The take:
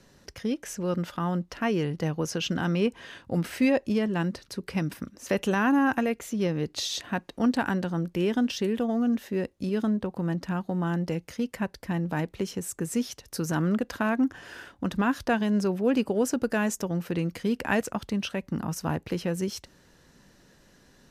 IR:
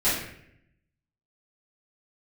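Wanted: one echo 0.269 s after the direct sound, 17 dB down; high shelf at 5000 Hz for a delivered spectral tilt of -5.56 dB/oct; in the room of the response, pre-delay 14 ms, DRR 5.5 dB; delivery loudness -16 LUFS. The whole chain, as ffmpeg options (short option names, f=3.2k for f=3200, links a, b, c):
-filter_complex "[0:a]highshelf=f=5k:g=3,aecho=1:1:269:0.141,asplit=2[a][b];[1:a]atrim=start_sample=2205,adelay=14[c];[b][c]afir=irnorm=-1:irlink=0,volume=-19dB[d];[a][d]amix=inputs=2:normalize=0,volume=10.5dB"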